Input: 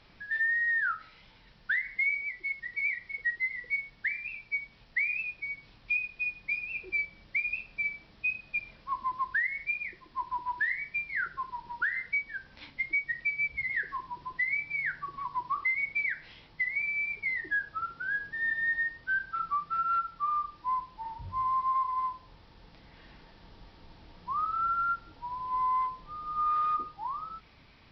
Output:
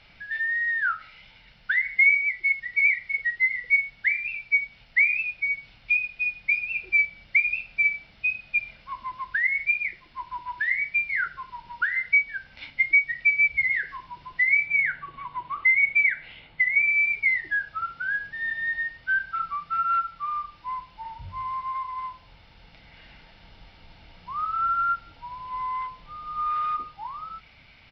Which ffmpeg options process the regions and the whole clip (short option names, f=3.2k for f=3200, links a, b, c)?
-filter_complex "[0:a]asettb=1/sr,asplit=3[a][b][c];[a]atrim=end=14.664[d];[b]atrim=start=14.66:end=16.91,asetpts=PTS-STARTPTS,afade=t=in:d=0.004:c=qsin,afade=t=out:st=2.246:d=0.004:c=qsin,lowpass=f=3.8k:w=0.5412,lowpass=f=3.8k:w=1.3066,equalizer=f=370:w=0.66:g=4[e];[c]atrim=start=16.906[f];[d][e]acrossfade=d=0.004:c1=hsin:c2=qsin[g];[g][f]acrossfade=d=0.004:c1=qsin:c2=hsin,equalizer=f=2.5k:t=o:w=1.1:g=9,aecho=1:1:1.4:0.39"